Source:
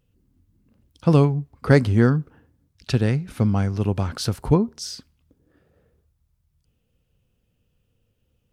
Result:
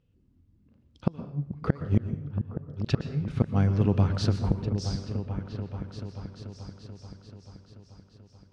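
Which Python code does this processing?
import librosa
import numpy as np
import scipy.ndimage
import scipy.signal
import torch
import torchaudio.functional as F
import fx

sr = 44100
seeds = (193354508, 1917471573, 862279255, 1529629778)

p1 = fx.highpass(x, sr, hz=41.0, slope=6)
p2 = fx.peak_eq(p1, sr, hz=1300.0, db=-3.5, octaves=3.0)
p3 = fx.gate_flip(p2, sr, shuts_db=-10.0, range_db=-31)
p4 = fx.air_absorb(p3, sr, metres=140.0)
p5 = p4 + fx.echo_opening(p4, sr, ms=435, hz=200, octaves=2, feedback_pct=70, wet_db=-6, dry=0)
y = fx.rev_plate(p5, sr, seeds[0], rt60_s=0.66, hf_ratio=0.8, predelay_ms=105, drr_db=10.5)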